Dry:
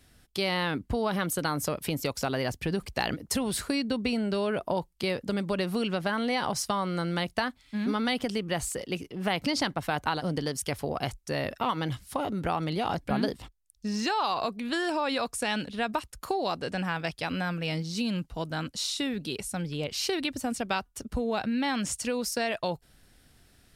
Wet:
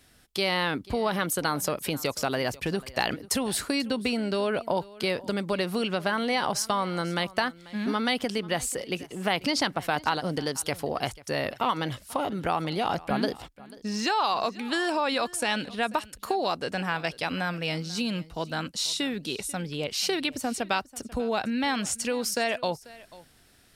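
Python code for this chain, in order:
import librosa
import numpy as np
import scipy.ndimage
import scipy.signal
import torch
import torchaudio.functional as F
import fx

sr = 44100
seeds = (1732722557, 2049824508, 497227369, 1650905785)

y = fx.low_shelf(x, sr, hz=190.0, db=-8.0)
y = y + 10.0 ** (-20.5 / 20.0) * np.pad(y, (int(490 * sr / 1000.0), 0))[:len(y)]
y = y * librosa.db_to_amplitude(3.0)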